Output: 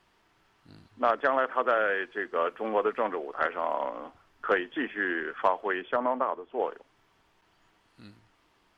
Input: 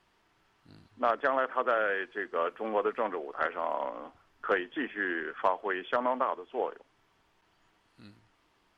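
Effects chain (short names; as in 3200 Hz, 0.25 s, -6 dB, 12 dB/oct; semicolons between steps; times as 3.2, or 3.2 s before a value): 5.81–6.59 high shelf 2800 Hz -> 2300 Hz -12 dB; gain +2.5 dB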